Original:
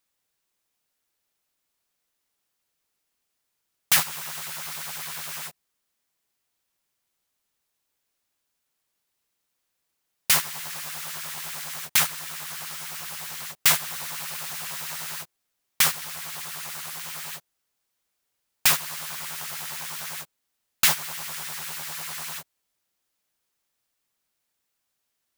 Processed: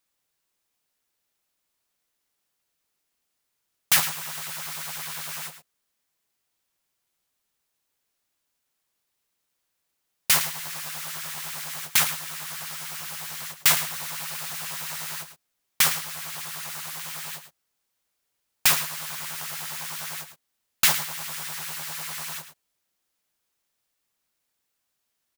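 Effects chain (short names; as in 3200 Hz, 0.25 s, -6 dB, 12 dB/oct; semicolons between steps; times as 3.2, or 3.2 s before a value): echo 0.109 s -11.5 dB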